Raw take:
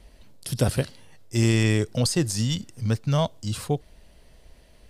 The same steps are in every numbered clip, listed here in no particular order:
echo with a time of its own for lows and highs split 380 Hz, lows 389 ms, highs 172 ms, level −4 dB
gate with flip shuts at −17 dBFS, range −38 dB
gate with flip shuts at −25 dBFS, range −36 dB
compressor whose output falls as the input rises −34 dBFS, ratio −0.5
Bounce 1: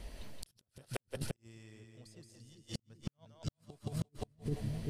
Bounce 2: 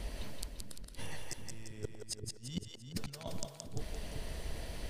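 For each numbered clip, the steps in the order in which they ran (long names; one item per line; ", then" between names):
echo with a time of its own for lows and highs, then first gate with flip, then compressor whose output falls as the input rises, then second gate with flip
compressor whose output falls as the input rises, then first gate with flip, then second gate with flip, then echo with a time of its own for lows and highs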